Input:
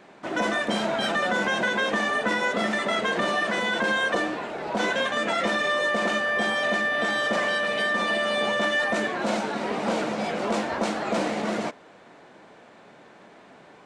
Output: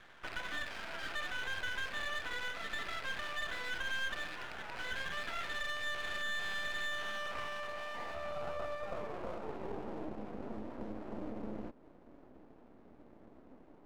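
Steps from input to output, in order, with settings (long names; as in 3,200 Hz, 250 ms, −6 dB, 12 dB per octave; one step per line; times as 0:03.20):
loose part that buzzes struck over −39 dBFS, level −20 dBFS
in parallel at −9 dB: wrap-around overflow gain 20.5 dB
on the sum: downward compressor 6 to 1, threshold −30 dBFS, peak gain reduction 9.5 dB
band-pass filter sweep 1,600 Hz → 270 Hz, 0:06.76–0:10.37
half-wave rectification
level +1.5 dB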